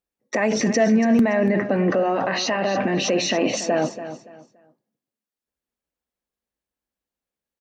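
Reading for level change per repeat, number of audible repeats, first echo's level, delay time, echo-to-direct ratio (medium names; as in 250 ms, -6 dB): -11.5 dB, 2, -12.0 dB, 285 ms, -11.5 dB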